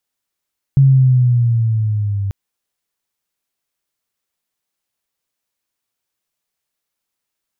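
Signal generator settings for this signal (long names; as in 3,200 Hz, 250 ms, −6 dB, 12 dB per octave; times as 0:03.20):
pitch glide with a swell sine, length 1.54 s, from 138 Hz, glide −6 semitones, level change −11.5 dB, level −5.5 dB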